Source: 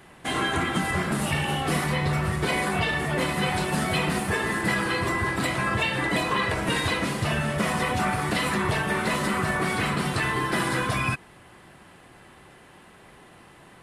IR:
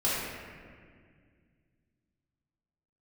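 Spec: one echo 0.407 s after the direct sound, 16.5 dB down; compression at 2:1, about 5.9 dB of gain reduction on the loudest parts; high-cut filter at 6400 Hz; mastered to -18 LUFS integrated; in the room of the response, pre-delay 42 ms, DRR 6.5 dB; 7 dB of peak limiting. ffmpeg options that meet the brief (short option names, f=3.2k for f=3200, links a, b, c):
-filter_complex "[0:a]lowpass=6.4k,acompressor=threshold=-32dB:ratio=2,alimiter=level_in=1.5dB:limit=-24dB:level=0:latency=1,volume=-1.5dB,aecho=1:1:407:0.15,asplit=2[a][b];[1:a]atrim=start_sample=2205,adelay=42[c];[b][c]afir=irnorm=-1:irlink=0,volume=-17.5dB[d];[a][d]amix=inputs=2:normalize=0,volume=15dB"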